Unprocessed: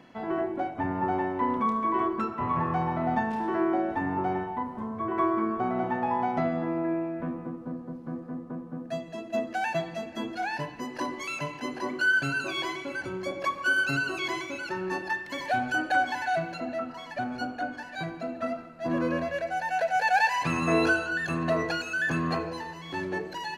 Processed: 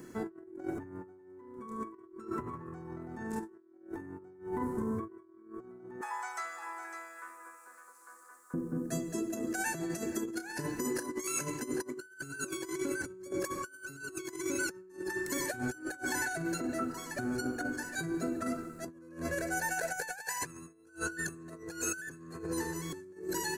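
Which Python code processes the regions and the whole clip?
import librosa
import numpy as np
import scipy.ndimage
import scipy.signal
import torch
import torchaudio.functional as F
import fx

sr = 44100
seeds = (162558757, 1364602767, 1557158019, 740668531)

y = fx.chain(x, sr, fx.highpass(hz=990.0, slope=24),
    fx.peak_eq(hz=7800.0, db=7.0, octaves=0.9),
    fx.echo_single(ms=555, db=-9.5), at=(6.01, 8.54))
y = fx.chain(y, sr, fx.low_shelf(hz=170.0, db=-4.0),
    fx.over_compress(threshold_db=-36.0, ratio=-0.5),
    fx.doubler(ms=33.0, db=-13), at=(9.83, 11.5))
y = fx.curve_eq(y, sr, hz=(100.0, 250.0, 370.0, 680.0, 1500.0, 3000.0, 5300.0, 7600.0), db=(0, -5, 6, -16, -4, -16, 0, 14))
y = fx.over_compress(y, sr, threshold_db=-38.0, ratio=-0.5)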